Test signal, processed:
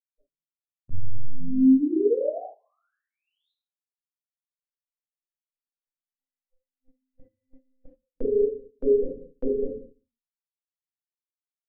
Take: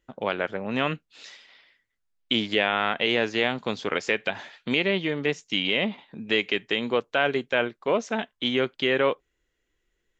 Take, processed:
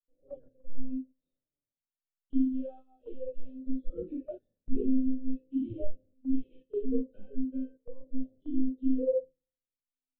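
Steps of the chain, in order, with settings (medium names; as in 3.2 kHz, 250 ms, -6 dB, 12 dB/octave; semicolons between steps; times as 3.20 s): monotone LPC vocoder at 8 kHz 260 Hz; compression 2.5:1, threshold -30 dBFS; elliptic low-pass 580 Hz, stop band 40 dB; flange 0.77 Hz, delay 5.5 ms, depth 4.5 ms, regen +25%; simulated room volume 64 m³, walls mixed, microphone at 1.9 m; spectral noise reduction 25 dB; gate -41 dBFS, range -11 dB; bass shelf 110 Hz -9 dB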